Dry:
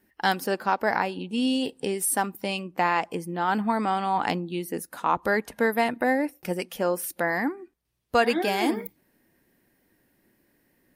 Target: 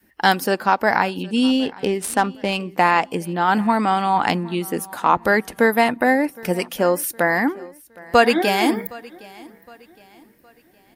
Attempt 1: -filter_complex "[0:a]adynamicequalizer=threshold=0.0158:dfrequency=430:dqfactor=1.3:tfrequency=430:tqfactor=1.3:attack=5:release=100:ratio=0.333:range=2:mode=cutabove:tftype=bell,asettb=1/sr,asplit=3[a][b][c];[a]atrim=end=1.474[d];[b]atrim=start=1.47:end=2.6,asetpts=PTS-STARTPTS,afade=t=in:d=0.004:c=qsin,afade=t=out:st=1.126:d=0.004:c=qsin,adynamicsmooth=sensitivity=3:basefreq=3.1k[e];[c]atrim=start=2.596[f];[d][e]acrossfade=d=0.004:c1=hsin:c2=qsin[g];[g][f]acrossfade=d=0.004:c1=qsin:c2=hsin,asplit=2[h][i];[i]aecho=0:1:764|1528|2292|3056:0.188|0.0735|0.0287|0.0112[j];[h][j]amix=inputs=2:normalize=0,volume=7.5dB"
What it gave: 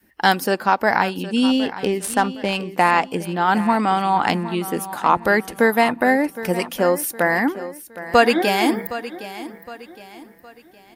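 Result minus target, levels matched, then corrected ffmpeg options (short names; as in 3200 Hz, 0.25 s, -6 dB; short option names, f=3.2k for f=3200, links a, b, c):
echo-to-direct +8 dB
-filter_complex "[0:a]adynamicequalizer=threshold=0.0158:dfrequency=430:dqfactor=1.3:tfrequency=430:tqfactor=1.3:attack=5:release=100:ratio=0.333:range=2:mode=cutabove:tftype=bell,asettb=1/sr,asplit=3[a][b][c];[a]atrim=end=1.474[d];[b]atrim=start=1.47:end=2.6,asetpts=PTS-STARTPTS,afade=t=in:d=0.004:c=qsin,afade=t=out:st=1.126:d=0.004:c=qsin,adynamicsmooth=sensitivity=3:basefreq=3.1k[e];[c]atrim=start=2.596[f];[d][e]acrossfade=d=0.004:c1=hsin:c2=qsin[g];[g][f]acrossfade=d=0.004:c1=qsin:c2=hsin,asplit=2[h][i];[i]aecho=0:1:764|1528|2292:0.075|0.0292|0.0114[j];[h][j]amix=inputs=2:normalize=0,volume=7.5dB"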